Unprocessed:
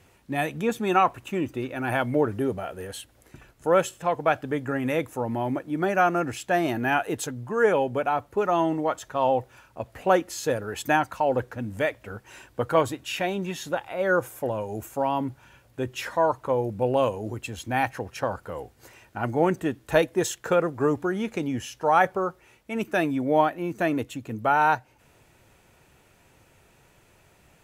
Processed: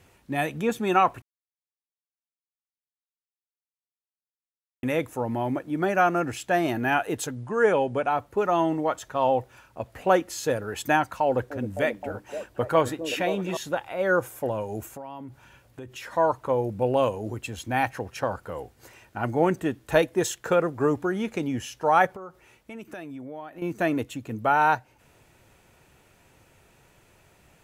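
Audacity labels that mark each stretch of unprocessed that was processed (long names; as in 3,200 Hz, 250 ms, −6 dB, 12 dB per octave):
1.220000	4.830000	silence
7.350000	8.100000	linear-phase brick-wall low-pass 11,000 Hz
11.240000	13.570000	echo through a band-pass that steps 262 ms, band-pass from 300 Hz, each repeat 0.7 octaves, level −4.5 dB
14.920000	16.130000	downward compressor, threshold −36 dBFS
22.060000	23.620000	downward compressor 5 to 1, threshold −37 dBFS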